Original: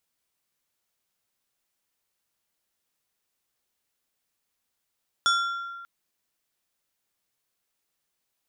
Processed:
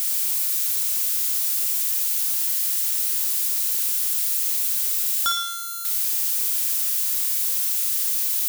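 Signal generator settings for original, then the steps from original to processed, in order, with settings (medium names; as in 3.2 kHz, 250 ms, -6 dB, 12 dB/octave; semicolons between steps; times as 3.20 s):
glass hit plate, length 0.59 s, lowest mode 1.38 kHz, decay 1.66 s, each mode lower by 4 dB, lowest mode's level -19 dB
zero-crossing glitches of -20.5 dBFS; flutter echo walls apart 9.5 m, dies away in 0.55 s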